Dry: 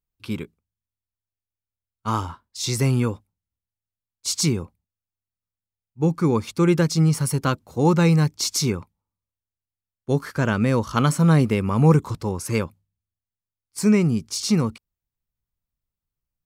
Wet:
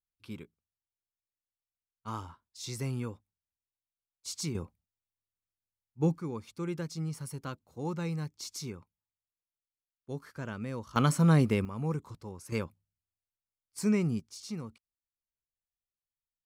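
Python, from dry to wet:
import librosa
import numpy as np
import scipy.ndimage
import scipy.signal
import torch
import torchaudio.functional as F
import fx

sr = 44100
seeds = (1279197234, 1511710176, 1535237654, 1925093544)

y = fx.gain(x, sr, db=fx.steps((0.0, -14.5), (4.55, -7.0), (6.18, -17.5), (10.96, -6.5), (11.65, -17.5), (12.52, -10.0), (14.2, -19.0)))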